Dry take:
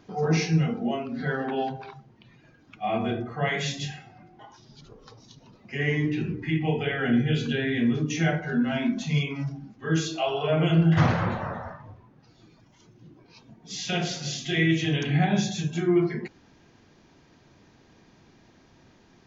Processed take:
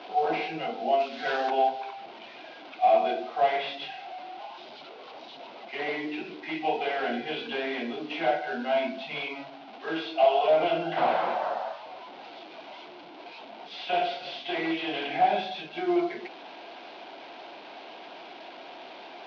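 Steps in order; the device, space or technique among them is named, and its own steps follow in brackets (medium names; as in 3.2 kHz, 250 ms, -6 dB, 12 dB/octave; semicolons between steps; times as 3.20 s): digital answering machine (band-pass 340–3400 Hz; one-bit delta coder 32 kbps, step -40.5 dBFS; cabinet simulation 430–3800 Hz, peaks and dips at 460 Hz -5 dB, 700 Hz +7 dB, 1.2 kHz -7 dB, 1.8 kHz -10 dB); 1.00–1.50 s: treble shelf 2.5 kHz +11.5 dB; trim +5 dB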